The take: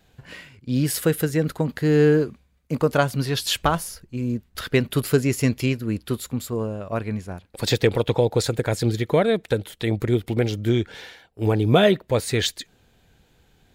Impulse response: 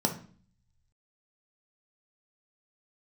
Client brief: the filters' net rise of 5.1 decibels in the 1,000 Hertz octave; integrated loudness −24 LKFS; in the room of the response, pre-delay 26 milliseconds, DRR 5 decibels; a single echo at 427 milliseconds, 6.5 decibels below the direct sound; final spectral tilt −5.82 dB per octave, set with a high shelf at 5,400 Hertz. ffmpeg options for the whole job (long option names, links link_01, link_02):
-filter_complex "[0:a]equalizer=frequency=1000:width_type=o:gain=7,highshelf=frequency=5400:gain=4,aecho=1:1:427:0.473,asplit=2[link_01][link_02];[1:a]atrim=start_sample=2205,adelay=26[link_03];[link_02][link_03]afir=irnorm=-1:irlink=0,volume=-13.5dB[link_04];[link_01][link_04]amix=inputs=2:normalize=0,volume=-6dB"